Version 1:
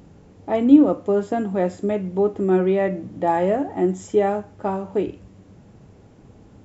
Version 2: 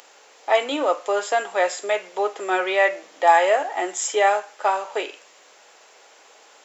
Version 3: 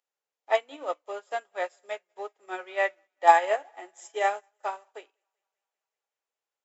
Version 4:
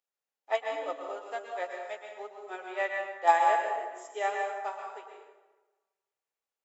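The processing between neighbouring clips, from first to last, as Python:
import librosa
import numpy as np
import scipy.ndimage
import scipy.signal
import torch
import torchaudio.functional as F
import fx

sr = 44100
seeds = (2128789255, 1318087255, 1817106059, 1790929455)

y1 = scipy.signal.sosfilt(scipy.signal.butter(4, 490.0, 'highpass', fs=sr, output='sos'), x)
y1 = fx.tilt_shelf(y1, sr, db=-9.5, hz=870.0)
y1 = y1 * 10.0 ** (7.0 / 20.0)
y2 = fx.echo_thinned(y1, sr, ms=193, feedback_pct=76, hz=420.0, wet_db=-17.5)
y2 = fx.upward_expand(y2, sr, threshold_db=-39.0, expansion=2.5)
y3 = fx.rev_plate(y2, sr, seeds[0], rt60_s=1.2, hf_ratio=0.65, predelay_ms=105, drr_db=1.5)
y3 = y3 * 10.0 ** (-5.5 / 20.0)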